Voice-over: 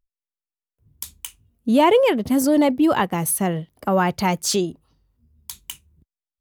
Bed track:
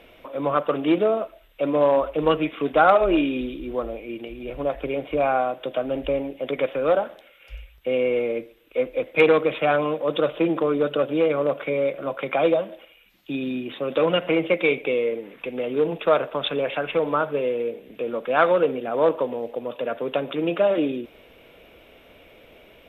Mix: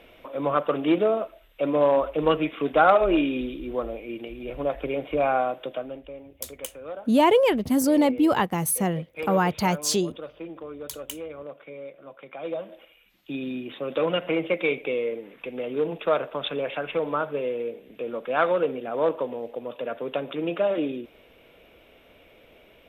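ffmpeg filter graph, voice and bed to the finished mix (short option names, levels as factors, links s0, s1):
-filter_complex "[0:a]adelay=5400,volume=0.708[s0];[1:a]volume=3.55,afade=t=out:st=5.52:d=0.51:silence=0.177828,afade=t=in:st=12.41:d=0.42:silence=0.237137[s1];[s0][s1]amix=inputs=2:normalize=0"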